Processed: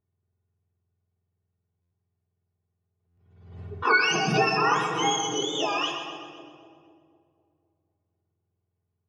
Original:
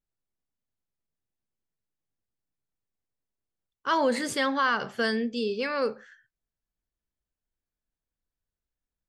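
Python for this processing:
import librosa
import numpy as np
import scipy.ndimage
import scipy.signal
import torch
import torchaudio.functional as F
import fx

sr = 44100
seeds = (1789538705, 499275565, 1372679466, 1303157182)

y = fx.octave_mirror(x, sr, pivot_hz=1200.0)
y = fx.peak_eq(y, sr, hz=270.0, db=-6.0, octaves=0.59)
y = fx.notch(y, sr, hz=4300.0, q=30.0)
y = y + 0.52 * np.pad(y, (int(2.7 * sr / 1000.0), 0))[:len(y)]
y = fx.env_lowpass(y, sr, base_hz=2800.0, full_db=-24.0)
y = fx.high_shelf(y, sr, hz=4000.0, db=-4.0)
y = fx.echo_split(y, sr, split_hz=700.0, low_ms=250, high_ms=127, feedback_pct=52, wet_db=-9)
y = fx.room_shoebox(y, sr, seeds[0], volume_m3=3100.0, walls='mixed', distance_m=1.3)
y = fx.buffer_glitch(y, sr, at_s=(1.81, 3.07), block=512, repeats=8)
y = fx.pre_swell(y, sr, db_per_s=64.0)
y = y * librosa.db_to_amplitude(3.5)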